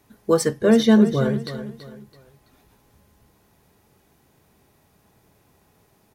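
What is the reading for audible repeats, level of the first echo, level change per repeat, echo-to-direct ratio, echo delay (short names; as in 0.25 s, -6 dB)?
3, -12.0 dB, -9.5 dB, -11.5 dB, 0.331 s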